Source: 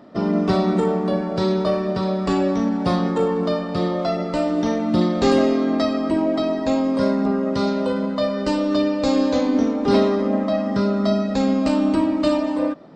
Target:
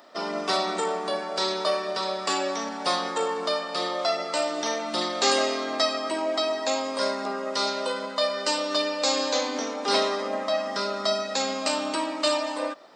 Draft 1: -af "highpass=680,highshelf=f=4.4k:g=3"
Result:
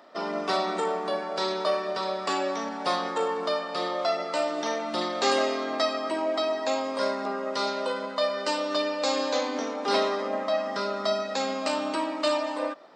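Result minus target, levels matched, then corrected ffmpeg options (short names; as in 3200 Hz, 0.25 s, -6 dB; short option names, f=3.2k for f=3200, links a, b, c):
8000 Hz band -6.0 dB
-af "highpass=680,highshelf=f=4.4k:g=14"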